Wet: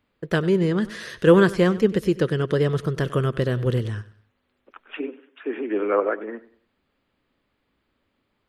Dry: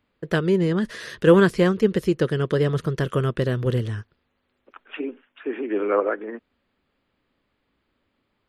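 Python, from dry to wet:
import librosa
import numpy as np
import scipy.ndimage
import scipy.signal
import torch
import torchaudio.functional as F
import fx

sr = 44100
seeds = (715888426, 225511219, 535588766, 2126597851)

y = fx.highpass(x, sr, hz=fx.line((5.06, 290.0), (5.99, 95.0)), slope=24, at=(5.06, 5.99), fade=0.02)
y = fx.echo_feedback(y, sr, ms=96, feedback_pct=35, wet_db=-18.0)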